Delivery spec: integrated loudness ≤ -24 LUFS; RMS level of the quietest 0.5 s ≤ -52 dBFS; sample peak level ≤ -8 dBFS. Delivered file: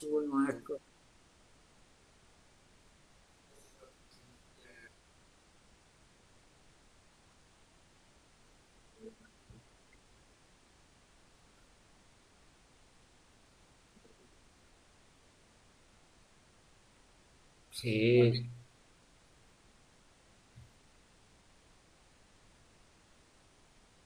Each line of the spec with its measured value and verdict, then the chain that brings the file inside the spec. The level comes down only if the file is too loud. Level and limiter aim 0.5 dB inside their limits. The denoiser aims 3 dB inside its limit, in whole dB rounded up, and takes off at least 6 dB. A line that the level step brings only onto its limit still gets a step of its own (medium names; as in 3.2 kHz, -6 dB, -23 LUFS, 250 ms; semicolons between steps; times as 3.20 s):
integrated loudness -32.0 LUFS: pass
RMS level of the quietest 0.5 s -64 dBFS: pass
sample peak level -16.0 dBFS: pass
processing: none needed